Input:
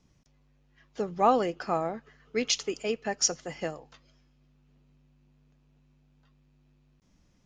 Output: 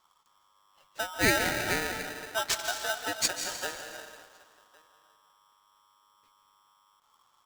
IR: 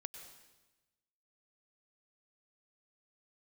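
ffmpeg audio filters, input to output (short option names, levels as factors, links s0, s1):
-filter_complex "[0:a]asplit=2[s0][s1];[s1]adelay=1108,volume=0.0562,highshelf=f=4000:g=-24.9[s2];[s0][s2]amix=inputs=2:normalize=0[s3];[1:a]atrim=start_sample=2205,asetrate=29106,aresample=44100[s4];[s3][s4]afir=irnorm=-1:irlink=0,aeval=exprs='val(0)*sgn(sin(2*PI*1100*n/s))':c=same"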